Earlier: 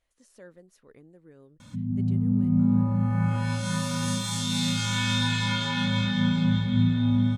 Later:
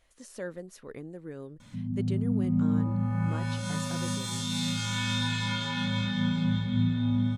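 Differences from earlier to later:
speech +11.0 dB; background -4.0 dB

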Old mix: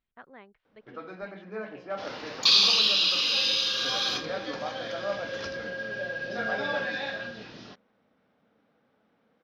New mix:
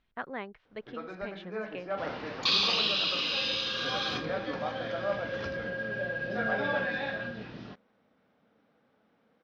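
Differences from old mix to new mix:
speech +11.5 dB; second sound: add tone controls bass +6 dB, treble -14 dB

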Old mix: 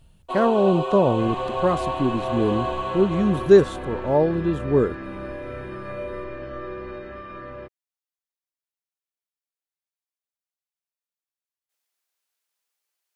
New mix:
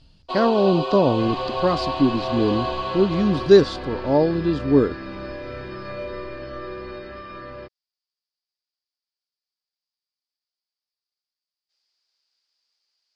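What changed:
speech: add peaking EQ 280 Hz +9 dB 0.23 oct; master: add resonant low-pass 4.8 kHz, resonance Q 10

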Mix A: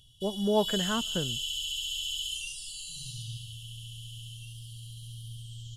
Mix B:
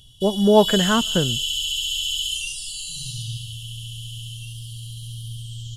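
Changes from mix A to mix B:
speech +11.5 dB; background +9.0 dB

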